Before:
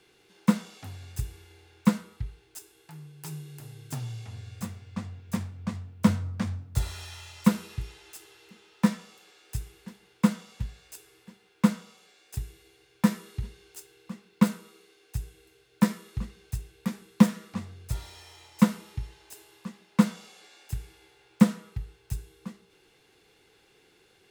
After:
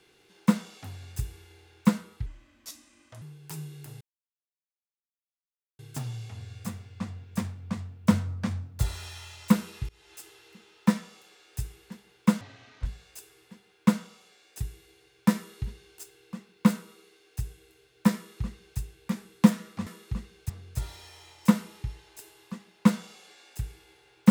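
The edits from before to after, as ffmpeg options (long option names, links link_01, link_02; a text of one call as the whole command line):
ffmpeg -i in.wav -filter_complex "[0:a]asplit=9[link_01][link_02][link_03][link_04][link_05][link_06][link_07][link_08][link_09];[link_01]atrim=end=2.264[link_10];[link_02]atrim=start=2.26:end=2.96,asetpts=PTS-STARTPTS,asetrate=32193,aresample=44100[link_11];[link_03]atrim=start=2.956:end=3.75,asetpts=PTS-STARTPTS,afade=type=out:start_time=0.79:duration=0.004:curve=hsin,apad=pad_dur=1.78[link_12];[link_04]atrim=start=3.75:end=7.85,asetpts=PTS-STARTPTS,afade=type=in:duration=0.004:curve=hsin,afade=type=out:start_time=4.096:duration=0.004:curve=hsin:silence=0.0707946[link_13];[link_05]atrim=start=7.85:end=10.374,asetpts=PTS-STARTPTS,afade=type=in:duration=0.3:silence=0.0707946[link_14];[link_06]atrim=start=10.37:end=10.62,asetpts=PTS-STARTPTS,asetrate=24696,aresample=44100,atrim=end_sample=19687,asetpts=PTS-STARTPTS[link_15];[link_07]atrim=start=10.616:end=17.632[link_16];[link_08]atrim=start=15.918:end=16.552[link_17];[link_09]atrim=start=17.628[link_18];[link_10][link_11]acrossfade=duration=0.004:curve1=hsin:curve2=hsin[link_19];[link_12][link_13][link_14]concat=n=3:v=0:a=1[link_20];[link_19][link_20]acrossfade=duration=0.004:curve1=hsin:curve2=hsin[link_21];[link_21][link_15]acrossfade=duration=0.004:curve1=hsin:curve2=hsin[link_22];[link_22][link_16]acrossfade=duration=0.004:curve1=hsin:curve2=hsin[link_23];[link_23][link_17]acrossfade=duration=0.004:curve1=hsin:curve2=hsin[link_24];[link_24][link_18]acrossfade=duration=0.004:curve1=hsin:curve2=hsin" out.wav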